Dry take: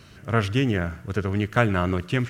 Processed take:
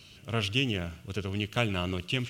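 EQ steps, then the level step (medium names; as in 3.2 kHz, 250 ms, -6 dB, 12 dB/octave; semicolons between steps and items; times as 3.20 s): resonant high shelf 2.2 kHz +7 dB, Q 3; -8.0 dB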